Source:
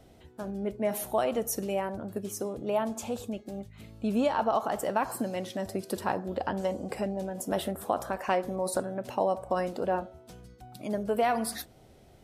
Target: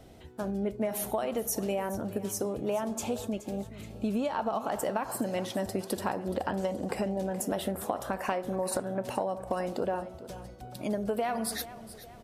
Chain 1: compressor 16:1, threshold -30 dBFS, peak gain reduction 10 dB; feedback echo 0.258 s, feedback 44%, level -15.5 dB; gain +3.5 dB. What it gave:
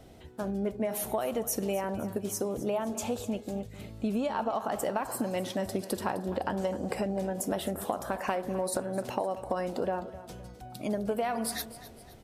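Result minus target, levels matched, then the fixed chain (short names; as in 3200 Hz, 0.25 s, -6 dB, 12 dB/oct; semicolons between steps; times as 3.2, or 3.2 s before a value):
echo 0.166 s early
compressor 16:1, threshold -30 dBFS, peak gain reduction 10 dB; feedback echo 0.424 s, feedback 44%, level -15.5 dB; gain +3.5 dB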